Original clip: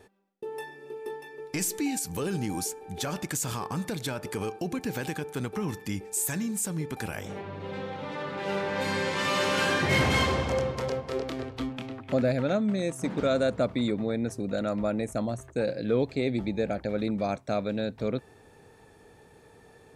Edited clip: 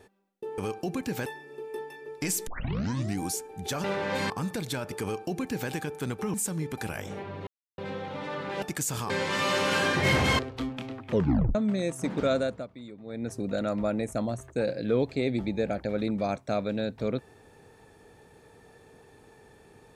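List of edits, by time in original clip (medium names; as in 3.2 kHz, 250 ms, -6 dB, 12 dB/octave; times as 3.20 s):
1.79 s: tape start 0.73 s
3.16–3.64 s: swap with 8.50–8.96 s
4.36–5.04 s: copy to 0.58 s
5.68–6.53 s: delete
7.66 s: insert silence 0.31 s
10.25–11.39 s: delete
12.08 s: tape stop 0.47 s
13.32–14.38 s: dip -16.5 dB, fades 0.35 s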